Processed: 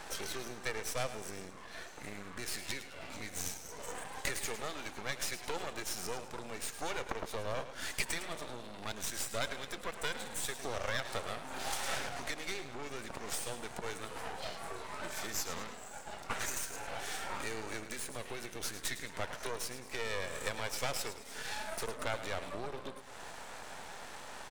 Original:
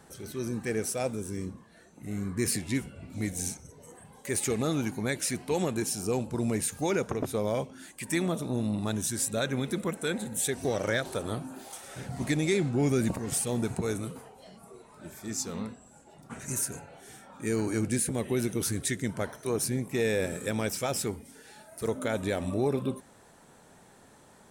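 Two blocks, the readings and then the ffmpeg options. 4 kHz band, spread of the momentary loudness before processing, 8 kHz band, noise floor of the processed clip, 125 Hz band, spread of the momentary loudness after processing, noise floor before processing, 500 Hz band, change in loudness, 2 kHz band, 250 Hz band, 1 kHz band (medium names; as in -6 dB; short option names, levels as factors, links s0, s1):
-1.0 dB, 14 LU, -7.5 dB, -49 dBFS, -16.0 dB, 10 LU, -57 dBFS, -10.5 dB, -9.0 dB, -2.0 dB, -18.0 dB, -1.5 dB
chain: -filter_complex "[0:a]acompressor=threshold=0.00891:ratio=16,acrossover=split=520 6800:gain=0.0891 1 0.2[s0][s1][s2];[s0][s1][s2]amix=inputs=3:normalize=0,aecho=1:1:107|214|321|428|535:0.251|0.113|0.0509|0.0229|0.0103,aeval=exprs='max(val(0),0)':c=same,volume=7.08"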